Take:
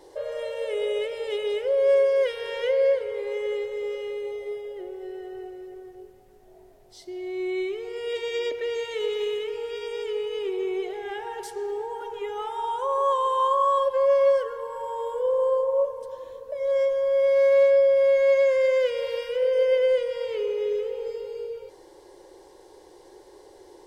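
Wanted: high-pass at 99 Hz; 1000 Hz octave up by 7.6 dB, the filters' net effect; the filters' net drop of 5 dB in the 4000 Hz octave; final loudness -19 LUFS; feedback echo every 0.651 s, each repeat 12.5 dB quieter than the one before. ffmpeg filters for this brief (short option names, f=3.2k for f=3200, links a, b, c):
-af "highpass=99,equalizer=f=1k:t=o:g=8.5,equalizer=f=4k:t=o:g=-8.5,aecho=1:1:651|1302|1953:0.237|0.0569|0.0137,volume=3dB"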